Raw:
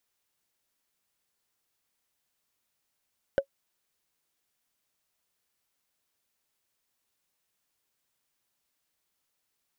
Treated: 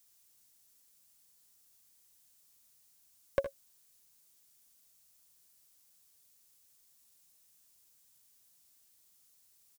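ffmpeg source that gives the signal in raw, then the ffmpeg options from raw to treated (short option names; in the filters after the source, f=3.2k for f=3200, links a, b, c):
-f lavfi -i "aevalsrc='0.188*pow(10,-3*t/0.08)*sin(2*PI*551*t)+0.0596*pow(10,-3*t/0.024)*sin(2*PI*1519.1*t)+0.0188*pow(10,-3*t/0.011)*sin(2*PI*2977.6*t)+0.00596*pow(10,-3*t/0.006)*sin(2*PI*4922.1*t)+0.00188*pow(10,-3*t/0.004)*sin(2*PI*7350.3*t)':d=0.45:s=44100"
-filter_complex "[0:a]bass=f=250:g=7,treble=f=4k:g=14,aeval=exprs='clip(val(0),-1,0.0668)':c=same,asplit=2[a][b];[b]aecho=0:1:64|78:0.251|0.224[c];[a][c]amix=inputs=2:normalize=0"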